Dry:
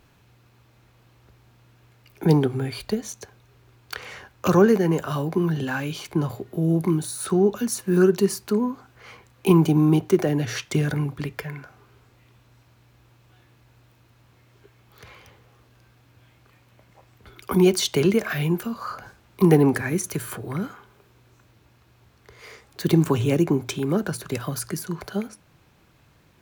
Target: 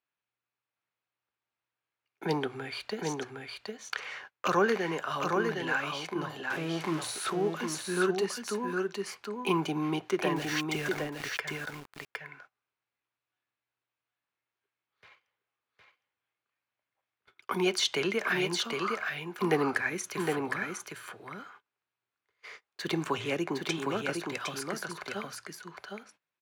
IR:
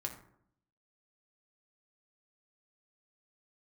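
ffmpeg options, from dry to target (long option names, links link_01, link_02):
-filter_complex "[0:a]asettb=1/sr,asplit=3[link_01][link_02][link_03];[link_01]atrim=end=6.504[link_04];[link_02]atrim=start=6.5:end=7.3,asetpts=PTS-STARTPTS,afade=type=in:duration=0.004:curve=qsin,afade=type=out:start_time=0.796:duration=0.004:curve=qsin,aeval=exprs='val(0)+0.5*0.0355*sgn(val(0))':channel_layout=same[link_05];[link_03]atrim=start=7.296[link_06];[link_04][link_05]acrossfade=duration=0.004:curve1=hsin:curve2=qsin[link_07];[link_07][link_06]acrossfade=duration=0.004:curve1=qsin:curve2=hsin,agate=range=-27dB:threshold=-44dB:ratio=16:detection=peak,bandpass=frequency=2000:width_type=q:width=0.64:csg=0,asettb=1/sr,asplit=3[link_08][link_09][link_10];[link_08]atrim=end=10.364[link_11];[link_09]atrim=start=10.36:end=11.4,asetpts=PTS-STARTPTS,afade=type=in:duration=0.004:curve=qsin,afade=type=out:start_time=1.036:duration=0.004:curve=qsin,aeval=exprs='val(0)*gte(abs(val(0)),0.0106)':channel_layout=same[link_12];[link_10]atrim=start=11.396[link_13];[link_11][link_12]acrossfade=duration=0.004:curve1=hsin:curve2=qsin[link_14];[link_14][link_13]acrossfade=duration=0.004:curve1=qsin:curve2=hsin,aecho=1:1:761:0.631"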